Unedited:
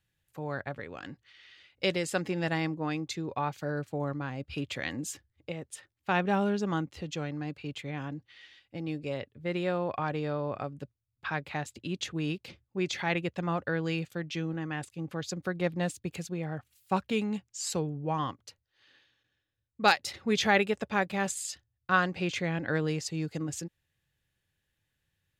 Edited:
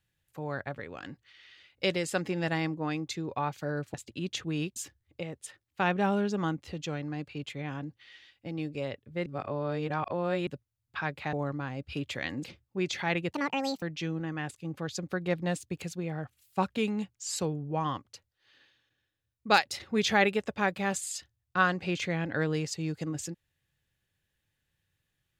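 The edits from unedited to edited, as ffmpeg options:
-filter_complex "[0:a]asplit=9[s0][s1][s2][s3][s4][s5][s6][s7][s8];[s0]atrim=end=3.942[s9];[s1]atrim=start=11.618:end=12.442[s10];[s2]atrim=start=5.048:end=9.552[s11];[s3]atrim=start=9.548:end=10.762,asetpts=PTS-STARTPTS,areverse[s12];[s4]atrim=start=10.758:end=11.622[s13];[s5]atrim=start=3.938:end=5.052[s14];[s6]atrim=start=12.438:end=13.314[s15];[s7]atrim=start=13.31:end=14.16,asetpts=PTS-STARTPTS,asetrate=73206,aresample=44100,atrim=end_sample=22581,asetpts=PTS-STARTPTS[s16];[s8]atrim=start=14.156[s17];[s9][s10]acrossfade=d=0.004:c1=hsin:c2=hsin[s18];[s18][s11]acrossfade=d=0.004:c1=hsin:c2=hsin[s19];[s19][s12]acrossfade=d=0.004:c1=hsin:c2=hsin[s20];[s20][s13]acrossfade=d=0.004:c1=hsin:c2=hsin[s21];[s21][s14]acrossfade=d=0.004:c1=hsin:c2=hsin[s22];[s22][s15]acrossfade=d=0.004:c1=hsin:c2=hsin[s23];[s23][s16]acrossfade=d=0.004:c1=hsin:c2=hsin[s24];[s24][s17]acrossfade=d=0.004:c1=hsin:c2=hsin"

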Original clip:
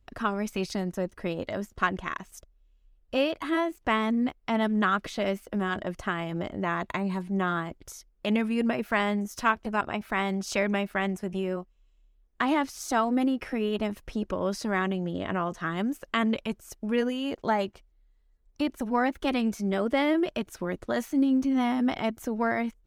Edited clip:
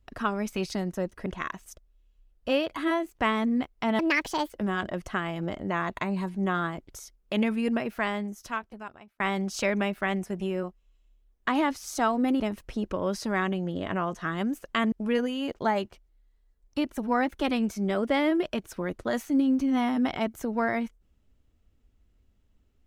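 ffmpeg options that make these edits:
-filter_complex "[0:a]asplit=7[s0][s1][s2][s3][s4][s5][s6];[s0]atrim=end=1.262[s7];[s1]atrim=start=1.918:end=4.654[s8];[s2]atrim=start=4.65:end=5.43,asetpts=PTS-STARTPTS,asetrate=67473,aresample=44100,atrim=end_sample=22482,asetpts=PTS-STARTPTS[s9];[s3]atrim=start=5.426:end=10.13,asetpts=PTS-STARTPTS,afade=t=out:st=3.074:d=1.63[s10];[s4]atrim=start=10.13:end=13.332,asetpts=PTS-STARTPTS,afade=t=in:d=0.004:c=hsin[s11];[s5]atrim=start=13.788:end=16.312[s12];[s6]atrim=start=16.748[s13];[s7][s8]acrossfade=d=0.004:c1=hsin:c2=hsin[s14];[s14][s9]acrossfade=d=0.004:c1=hsin:c2=hsin[s15];[s10][s11]concat=n=2:v=0:a=1[s16];[s15][s16]acrossfade=d=0.004:c1=hsin:c2=hsin[s17];[s17][s12]acrossfade=d=0.004:c1=hsin:c2=hsin[s18];[s18][s13]acrossfade=d=0.004:c1=hsin:c2=hsin"

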